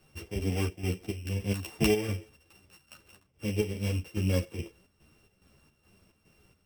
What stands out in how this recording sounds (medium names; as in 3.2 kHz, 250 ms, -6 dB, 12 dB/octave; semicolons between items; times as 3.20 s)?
a buzz of ramps at a fixed pitch in blocks of 16 samples; chopped level 2.4 Hz, depth 60%, duty 65%; a shimmering, thickened sound